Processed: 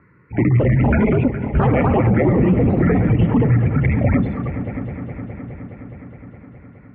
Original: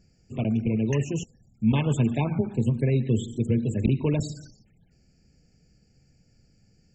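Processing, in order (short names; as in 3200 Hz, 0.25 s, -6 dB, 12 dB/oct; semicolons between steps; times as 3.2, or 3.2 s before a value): echoes that change speed 0.312 s, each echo +5 st, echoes 2; air absorption 370 m; on a send: multi-head echo 0.208 s, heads all three, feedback 66%, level -21.5 dB; on the sum: mistuned SSB -350 Hz 290–2500 Hz; HPF 130 Hz 12 dB/oct; maximiser +33 dB; gain -7 dB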